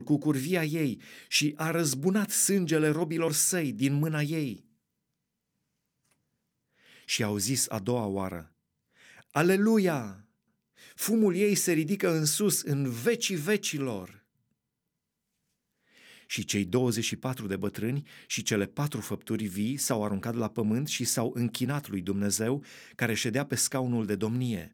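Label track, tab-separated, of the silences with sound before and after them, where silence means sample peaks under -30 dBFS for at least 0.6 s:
4.530000	7.090000	silence
8.400000	9.360000	silence
10.100000	11.000000	silence
14.040000	16.310000	silence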